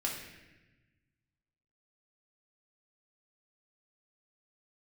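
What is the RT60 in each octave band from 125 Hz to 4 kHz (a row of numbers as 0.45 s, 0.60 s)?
2.0 s, 1.6 s, 1.2 s, 1.0 s, 1.3 s, 0.95 s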